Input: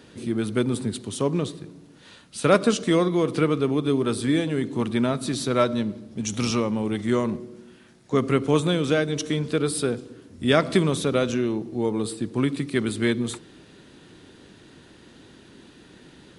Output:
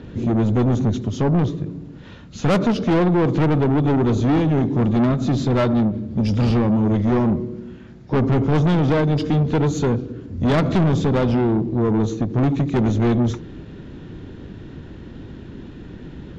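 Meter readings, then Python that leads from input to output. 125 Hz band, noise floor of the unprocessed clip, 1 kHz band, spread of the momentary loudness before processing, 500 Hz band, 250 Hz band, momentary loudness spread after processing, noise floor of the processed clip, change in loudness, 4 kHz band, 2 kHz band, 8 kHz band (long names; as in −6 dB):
+10.0 dB, −51 dBFS, +4.5 dB, 9 LU, +1.5 dB, +6.0 dB, 20 LU, −39 dBFS, +5.0 dB, −4.0 dB, −1.0 dB, can't be measured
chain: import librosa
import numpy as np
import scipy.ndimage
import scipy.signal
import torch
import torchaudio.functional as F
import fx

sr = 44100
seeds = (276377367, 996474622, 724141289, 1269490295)

y = fx.freq_compress(x, sr, knee_hz=3400.0, ratio=1.5)
y = fx.riaa(y, sr, side='playback')
y = 10.0 ** (-20.0 / 20.0) * np.tanh(y / 10.0 ** (-20.0 / 20.0))
y = fx.end_taper(y, sr, db_per_s=150.0)
y = y * librosa.db_to_amplitude(6.0)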